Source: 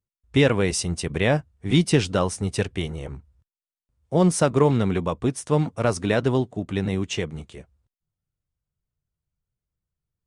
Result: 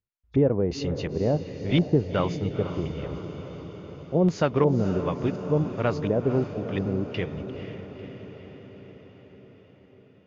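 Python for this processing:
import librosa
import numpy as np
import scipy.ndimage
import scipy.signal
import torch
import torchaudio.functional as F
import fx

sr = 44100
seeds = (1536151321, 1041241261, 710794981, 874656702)

y = fx.freq_compress(x, sr, knee_hz=3400.0, ratio=1.5)
y = fx.filter_lfo_lowpass(y, sr, shape='square', hz=1.4, low_hz=560.0, high_hz=3100.0, q=1.1)
y = fx.echo_diffused(y, sr, ms=487, feedback_pct=64, wet_db=-10.0)
y = y * 10.0 ** (-3.5 / 20.0)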